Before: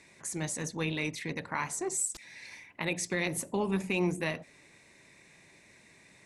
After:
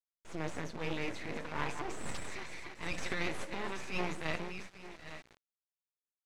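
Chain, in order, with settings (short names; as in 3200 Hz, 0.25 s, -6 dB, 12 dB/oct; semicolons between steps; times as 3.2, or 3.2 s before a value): regenerating reverse delay 0.425 s, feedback 47%, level -10.5 dB; HPF 820 Hz 6 dB/oct; gate -51 dBFS, range -10 dB; tilt shelf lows +4.5 dB, about 1300 Hz, from 2.04 s lows -4 dB; transient shaper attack -10 dB, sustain +7 dB; flange 0.43 Hz, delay 4.7 ms, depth 4.6 ms, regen -32%; half-wave rectifier; companded quantiser 4-bit; tape spacing loss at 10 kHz 22 dB; gain +10 dB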